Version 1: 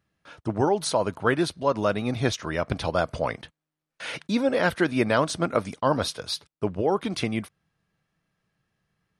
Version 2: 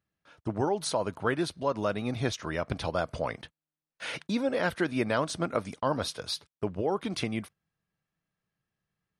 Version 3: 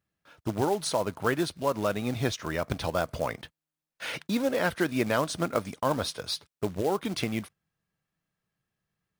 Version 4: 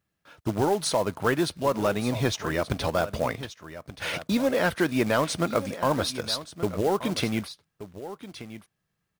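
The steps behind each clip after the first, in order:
noise gate −41 dBFS, range −8 dB; in parallel at 0 dB: downward compressor, threshold −29 dBFS, peak gain reduction 12 dB; on the sum: level −8 dB
floating-point word with a short mantissa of 2 bits; level +1.5 dB
in parallel at −5.5 dB: hard clipping −24 dBFS, distortion −10 dB; on the sum: single-tap delay 1,178 ms −13.5 dB

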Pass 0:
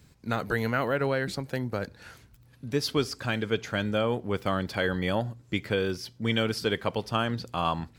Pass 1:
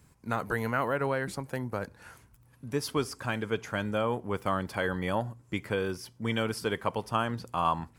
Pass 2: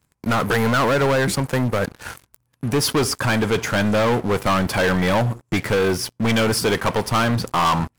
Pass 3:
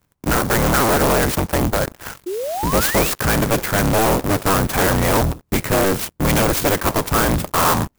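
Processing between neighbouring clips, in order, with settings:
graphic EQ with 15 bands 1,000 Hz +7 dB, 4,000 Hz −7 dB, 10,000 Hz +7 dB; level −3.5 dB
leveller curve on the samples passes 5
sub-harmonics by changed cycles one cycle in 3, inverted; sound drawn into the spectrogram rise, 0:02.26–0:03.10, 340–2,900 Hz −26 dBFS; converter with an unsteady clock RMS 0.068 ms; level +2 dB

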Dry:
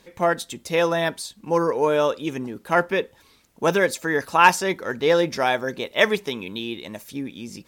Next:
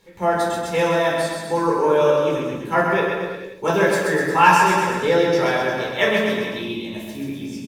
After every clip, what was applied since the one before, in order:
bouncing-ball delay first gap 130 ms, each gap 0.9×, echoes 5
rectangular room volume 550 cubic metres, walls furnished, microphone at 4.3 metres
level −6.5 dB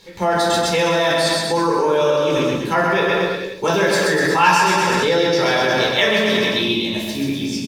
in parallel at +1 dB: compressor whose output falls as the input rises −24 dBFS, ratio −1
on the sum: parametric band 4,500 Hz +10 dB 1.1 octaves
level −2.5 dB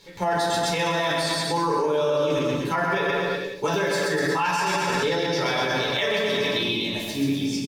comb filter 7 ms, depth 47%
brickwall limiter −10.5 dBFS, peak gain reduction 8.5 dB
level −4.5 dB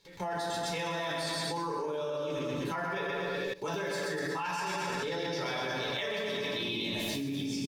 output level in coarse steps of 17 dB

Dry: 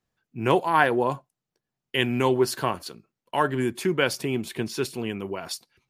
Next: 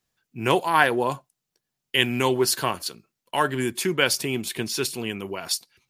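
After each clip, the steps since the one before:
high-shelf EQ 2,300 Hz +10.5 dB
level −1 dB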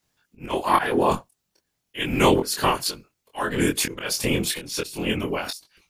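random phases in short frames
volume swells 296 ms
chorus effect 0.35 Hz, depth 2.1 ms
level +8.5 dB

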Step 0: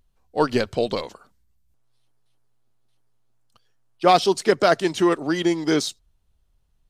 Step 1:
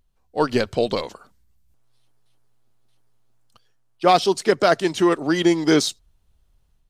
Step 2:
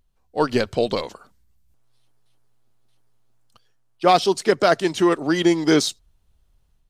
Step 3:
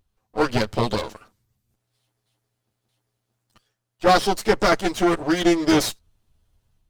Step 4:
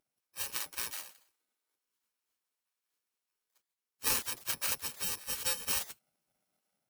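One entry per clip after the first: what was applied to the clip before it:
automatic gain control gain up to 6 dB; level −1.5 dB
no processing that can be heard
lower of the sound and its delayed copy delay 9.3 ms
samples in bit-reversed order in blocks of 64 samples; gate on every frequency bin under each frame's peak −20 dB weak; harmonic generator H 3 −15 dB, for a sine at −9.5 dBFS

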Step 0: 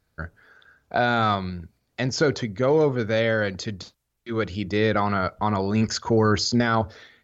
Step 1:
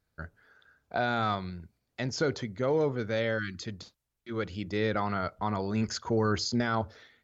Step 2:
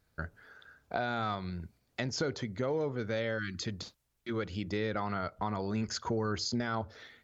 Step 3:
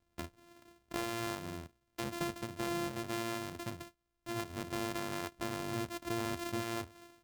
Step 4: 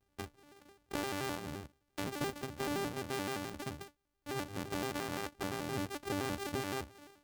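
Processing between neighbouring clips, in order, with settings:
time-frequency box erased 0:03.38–0:03.62, 370–1,100 Hz; level −7.5 dB
downward compressor 2.5 to 1, threshold −40 dBFS, peak gain reduction 11.5 dB; level +5.5 dB
samples sorted by size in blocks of 128 samples; level −4.5 dB
pitch modulation by a square or saw wave square 5.8 Hz, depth 250 cents

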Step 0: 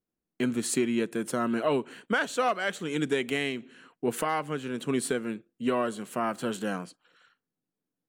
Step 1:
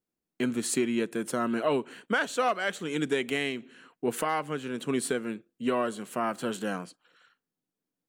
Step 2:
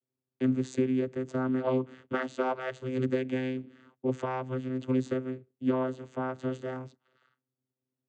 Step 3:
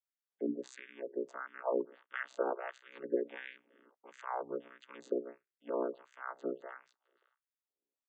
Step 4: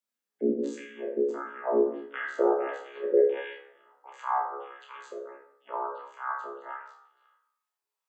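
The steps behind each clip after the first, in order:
low-shelf EQ 120 Hz −5 dB
channel vocoder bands 16, saw 129 Hz
ring modulation 30 Hz; auto-filter high-pass sine 1.5 Hz 370–1,800 Hz; gate on every frequency bin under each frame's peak −25 dB strong; level −5.5 dB
high-pass filter sweep 220 Hz → 960 Hz, 0:01.74–0:04.34; flutter between parallel walls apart 4.9 metres, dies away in 0.3 s; dense smooth reverb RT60 0.68 s, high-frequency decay 0.55×, DRR 0 dB; level +1.5 dB

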